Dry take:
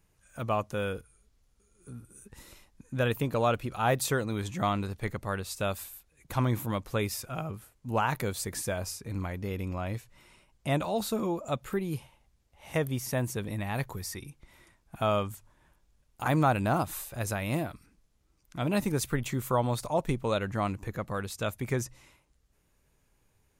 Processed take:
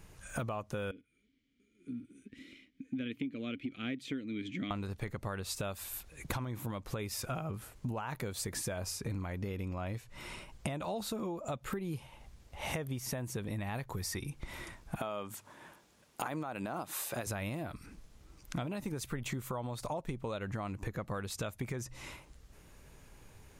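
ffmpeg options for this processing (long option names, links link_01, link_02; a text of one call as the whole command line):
ffmpeg -i in.wav -filter_complex "[0:a]asettb=1/sr,asplit=3[link_01][link_02][link_03];[link_01]atrim=end=0.914[link_04];[link_02]atrim=start=0.91:end=4.71,asetpts=PTS-STARTPTS,afade=type=in:duration=0.004:curve=qsin,afade=type=out:start_time=3.796:duration=0.004:curve=qsin,asplit=3[link_05][link_06][link_07];[link_05]bandpass=frequency=270:width_type=q:width=8,volume=0dB[link_08];[link_06]bandpass=frequency=2290:width_type=q:width=8,volume=-6dB[link_09];[link_07]bandpass=frequency=3010:width_type=q:width=8,volume=-9dB[link_10];[link_08][link_09][link_10]amix=inputs=3:normalize=0[link_11];[link_03]atrim=start=4.706[link_12];[link_04][link_11]acrossfade=duration=0.004:curve1=hsin:curve2=qsin[link_13];[link_13][link_12]acrossfade=duration=0.004:curve1=qsin:curve2=hsin,asettb=1/sr,asplit=3[link_14][link_15][link_16];[link_14]atrim=end=14.994[link_17];[link_15]atrim=start=14.99:end=17.27,asetpts=PTS-STARTPTS,afade=type=in:duration=0.004:curve=qsin,afade=type=out:start_time=2.276:duration=0.004:curve=qsin,highpass=210[link_18];[link_16]atrim=start=17.266[link_19];[link_17][link_18]acrossfade=duration=0.004:curve1=hsin:curve2=qsin[link_20];[link_20][link_19]acrossfade=duration=0.004:curve1=qsin:curve2=hsin,alimiter=level_in=1dB:limit=-24dB:level=0:latency=1:release=210,volume=-1dB,highshelf=frequency=9100:gain=-6,acompressor=threshold=-48dB:ratio=12,volume=13.5dB" out.wav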